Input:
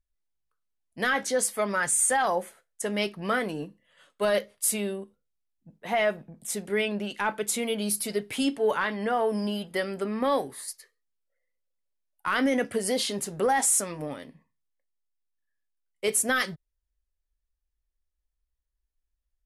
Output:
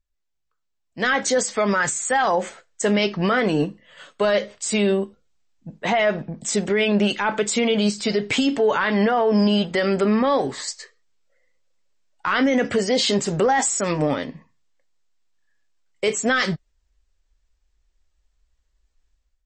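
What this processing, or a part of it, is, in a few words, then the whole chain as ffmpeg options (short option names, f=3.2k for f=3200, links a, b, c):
low-bitrate web radio: -filter_complex "[0:a]asettb=1/sr,asplit=3[a][b][c];[a]atrim=end=1.674[d];[b]atrim=start=1.67:end=2.41,asetpts=PTS-STARTPTS,afade=t=in:d=0.004:c=qsin,afade=t=out:st=0.736:d=0.004:c=qsin,equalizer=f=620:t=o:w=0.45:g=-2[e];[c]atrim=start=2.406[f];[d][e]acrossfade=d=0.004:c1=hsin:c2=qsin[g];[g][f]acrossfade=d=0.004:c1=qsin:c2=hsin,dynaudnorm=f=910:g=3:m=13dB,alimiter=limit=-14dB:level=0:latency=1:release=69,volume=3dB" -ar 24000 -c:a libmp3lame -b:a 32k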